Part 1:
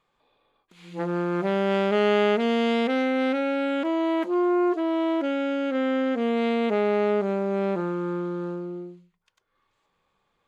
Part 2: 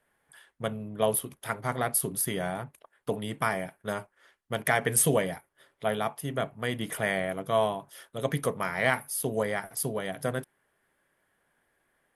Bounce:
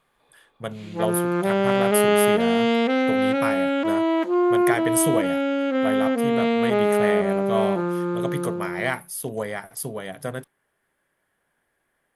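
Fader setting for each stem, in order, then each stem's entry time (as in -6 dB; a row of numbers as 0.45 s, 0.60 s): +3.0 dB, 0.0 dB; 0.00 s, 0.00 s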